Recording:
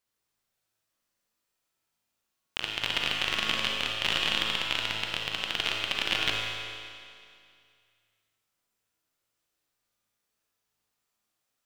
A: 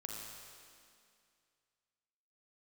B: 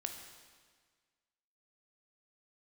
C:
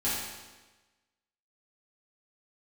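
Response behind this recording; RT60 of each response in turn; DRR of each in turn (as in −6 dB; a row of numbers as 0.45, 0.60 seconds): A; 2.3, 1.6, 1.2 seconds; −1.5, 4.0, −11.0 decibels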